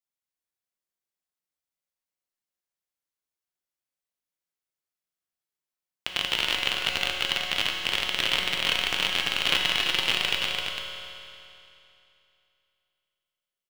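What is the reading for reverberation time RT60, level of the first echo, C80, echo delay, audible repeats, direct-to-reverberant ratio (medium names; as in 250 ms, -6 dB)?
2.8 s, -5.0 dB, 0.0 dB, 338 ms, 1, -2.0 dB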